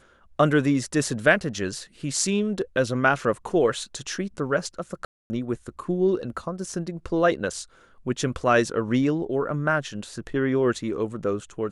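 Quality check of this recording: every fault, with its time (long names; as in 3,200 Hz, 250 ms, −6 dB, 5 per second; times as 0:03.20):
0:05.05–0:05.30: drop-out 250 ms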